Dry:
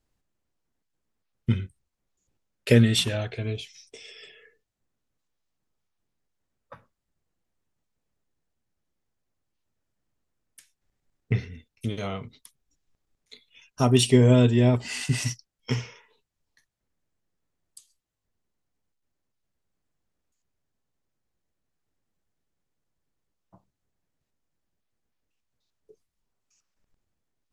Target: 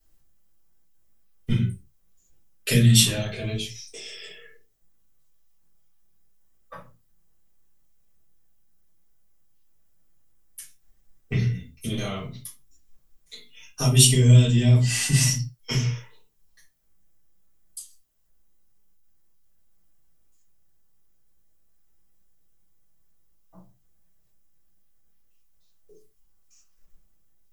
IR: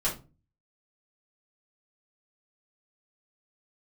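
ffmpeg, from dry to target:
-filter_complex "[0:a]aemphasis=mode=production:type=50fm,acrossover=split=220|2300[link_01][link_02][link_03];[link_02]acompressor=threshold=-36dB:ratio=6[link_04];[link_01][link_04][link_03]amix=inputs=3:normalize=0[link_05];[1:a]atrim=start_sample=2205,afade=type=out:start_time=0.26:duration=0.01,atrim=end_sample=11907[link_06];[link_05][link_06]afir=irnorm=-1:irlink=0,volume=-3dB"

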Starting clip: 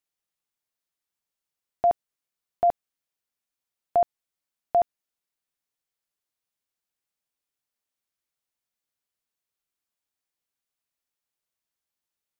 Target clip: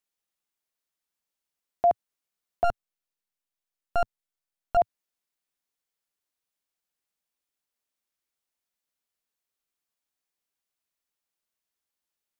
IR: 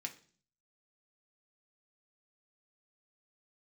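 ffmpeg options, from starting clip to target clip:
-filter_complex "[0:a]equalizer=frequency=110:width_type=o:width=0.34:gain=-13,asettb=1/sr,asplit=3[link_01][link_02][link_03];[link_01]atrim=end=2.644[link_04];[link_02]atrim=start=2.64:end=4.77,asetpts=PTS-STARTPTS,afade=type=in:duration=0.004:curve=qsin,afade=type=out:start_time=2.126:duration=0.004:curve=qsin,aeval=exprs='max(val(0),0)':channel_layout=same[link_05];[link_03]atrim=start=4.766[link_06];[link_04][link_05]acrossfade=duration=0.004:curve1=hsin:curve2=qsin[link_07];[link_07][link_06]acrossfade=duration=0.004:curve1=qsin:curve2=hsin"

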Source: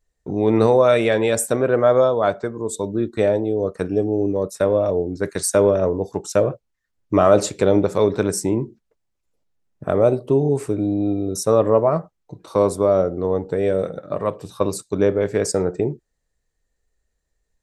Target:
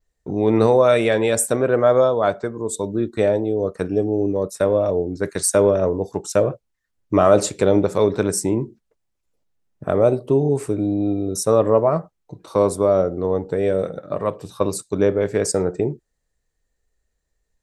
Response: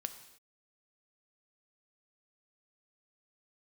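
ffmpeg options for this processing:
-af "adynamicequalizer=threshold=0.00708:dfrequency=9200:dqfactor=1.9:tfrequency=9200:tqfactor=1.9:attack=5:release=100:ratio=0.375:range=2:mode=boostabove:tftype=bell"

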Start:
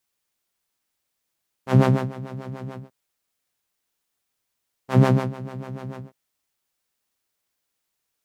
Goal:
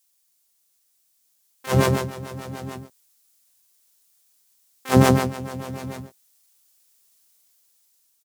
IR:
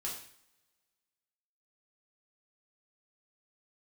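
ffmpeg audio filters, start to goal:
-filter_complex "[0:a]bass=frequency=250:gain=-3,treble=frequency=4000:gain=15,dynaudnorm=framelen=730:gausssize=5:maxgain=11.5dB,asplit=3[link_01][link_02][link_03];[link_02]asetrate=29433,aresample=44100,atempo=1.49831,volume=-9dB[link_04];[link_03]asetrate=88200,aresample=44100,atempo=0.5,volume=-5dB[link_05];[link_01][link_04][link_05]amix=inputs=3:normalize=0,volume=-3dB"

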